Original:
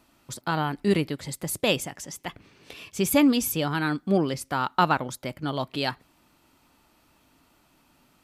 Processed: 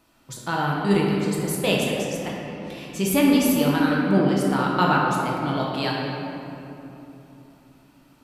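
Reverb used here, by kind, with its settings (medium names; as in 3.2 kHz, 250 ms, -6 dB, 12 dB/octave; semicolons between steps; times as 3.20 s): simulated room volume 150 m³, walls hard, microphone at 0.65 m; trim -1.5 dB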